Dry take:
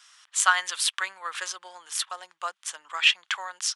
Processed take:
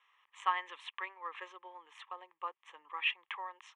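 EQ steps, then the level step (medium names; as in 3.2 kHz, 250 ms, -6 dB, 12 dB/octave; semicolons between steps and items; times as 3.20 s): tape spacing loss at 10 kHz 37 dB; treble shelf 5.2 kHz -8 dB; static phaser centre 980 Hz, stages 8; 0.0 dB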